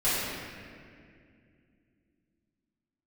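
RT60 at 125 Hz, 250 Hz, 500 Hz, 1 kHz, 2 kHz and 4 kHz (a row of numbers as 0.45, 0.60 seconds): 3.3, 3.7, 2.6, 1.9, 2.2, 1.5 seconds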